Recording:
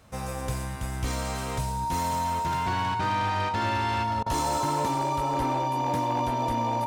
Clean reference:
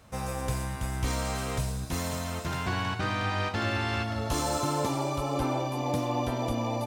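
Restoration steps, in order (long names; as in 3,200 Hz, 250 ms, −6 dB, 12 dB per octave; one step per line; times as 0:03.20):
clipped peaks rebuilt −21 dBFS
notch filter 930 Hz, Q 30
repair the gap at 0:04.23, 31 ms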